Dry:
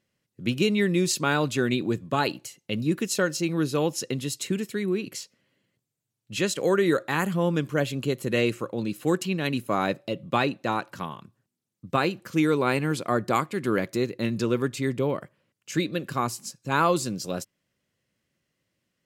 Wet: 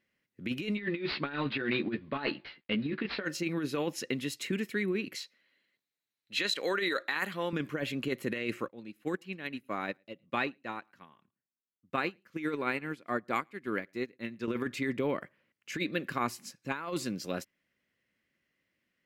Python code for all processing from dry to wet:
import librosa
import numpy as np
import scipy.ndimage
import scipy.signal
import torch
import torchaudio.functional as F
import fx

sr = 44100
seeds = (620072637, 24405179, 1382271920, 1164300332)

y = fx.chain(x, sr, fx.cvsd(bps=64000),
    fx.steep_lowpass(hz=4600.0, slope=72),
    fx.doubler(ms=14.0, db=-4), at=(0.77, 3.25))
y = fx.chain(y, sr, fx.highpass(hz=600.0, slope=6),
    fx.peak_eq(hz=4000.0, db=12.0, octaves=0.22), at=(5.16, 7.53))
y = fx.chain(y, sr, fx.echo_single(ms=110, db=-23.5),
    fx.upward_expand(threshold_db=-32.0, expansion=2.5), at=(8.68, 14.48))
y = fx.graphic_eq(y, sr, hz=(125, 250, 2000, 8000), db=(-6, 4, 10, -6))
y = fx.over_compress(y, sr, threshold_db=-23.0, ratio=-0.5)
y = y * librosa.db_to_amplitude(-7.5)